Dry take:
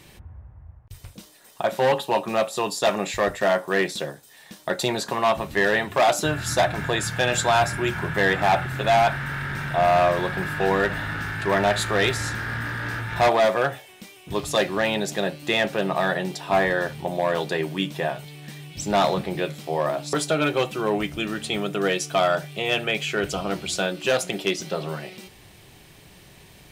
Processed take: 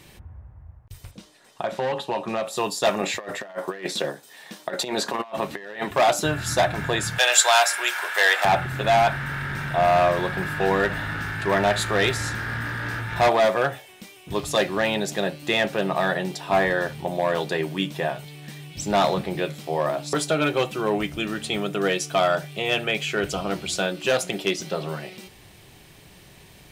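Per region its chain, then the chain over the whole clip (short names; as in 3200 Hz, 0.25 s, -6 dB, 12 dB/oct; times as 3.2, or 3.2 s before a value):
1.11–2.47 compressor 4:1, threshold -21 dBFS + air absorption 55 m
3.01–5.91 HPF 210 Hz + high shelf 6500 Hz -6.5 dB + negative-ratio compressor -28 dBFS, ratio -0.5
7.18–8.45 HPF 530 Hz 24 dB/oct + high shelf 2400 Hz +11 dB
whole clip: dry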